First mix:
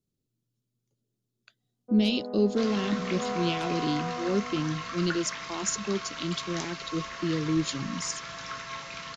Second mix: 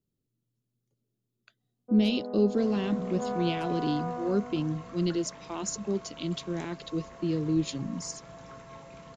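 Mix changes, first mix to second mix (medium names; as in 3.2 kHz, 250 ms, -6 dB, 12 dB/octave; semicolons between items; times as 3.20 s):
second sound: add high-order bell 2.6 kHz -14.5 dB 2.8 oct; master: add peaking EQ 5.4 kHz -5 dB 2 oct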